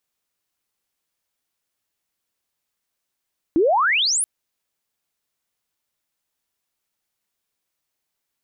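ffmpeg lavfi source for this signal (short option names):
-f lavfi -i "aevalsrc='pow(10,(-13-5*t/0.68)/20)*sin(2*PI*300*0.68/log(11000/300)*(exp(log(11000/300)*t/0.68)-1))':d=0.68:s=44100"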